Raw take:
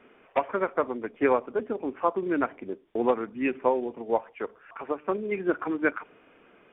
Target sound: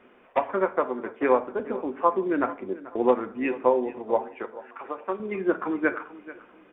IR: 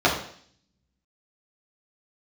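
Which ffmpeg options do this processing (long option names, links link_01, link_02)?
-filter_complex "[0:a]asettb=1/sr,asplit=3[link_01][link_02][link_03];[link_01]atrim=end=0.794[link_04];[link_02]atrim=start=0.79:end=1.3,asetpts=PTS-STARTPTS,afade=type=in:duration=0.004:curve=qsin,afade=type=out:start_time=0.506:duration=0.004:curve=qsin,highpass=frequency=170:poles=1[link_05];[link_03]atrim=start=1.296[link_06];[link_04][link_05]acrossfade=duration=0.004:curve1=hsin:curve2=qsin[link_07];[link_07][link_06]acrossfade=duration=0.004:curve1=qsin:curve2=hsin,asettb=1/sr,asplit=3[link_08][link_09][link_10];[link_08]atrim=end=4.434[link_11];[link_09]atrim=start=4.43:end=5.2,asetpts=PTS-STARTPTS,afade=type=in:duration=0.004:curve=qsin,afade=type=out:start_time=0.766:duration=0.004:curve=qsin,lowshelf=frequency=420:gain=-11.5[link_12];[link_10]atrim=start=5.196[link_13];[link_11][link_12]acrossfade=duration=0.004:curve1=hsin:curve2=qsin[link_14];[link_14][link_13]acrossfade=duration=0.004:curve1=qsin:curve2=hsin,aecho=1:1:436|872|1308:0.133|0.0387|0.0112,asplit=2[link_15][link_16];[1:a]atrim=start_sample=2205,asetrate=61740,aresample=44100[link_17];[link_16][link_17]afir=irnorm=-1:irlink=0,volume=-24dB[link_18];[link_15][link_18]amix=inputs=2:normalize=0"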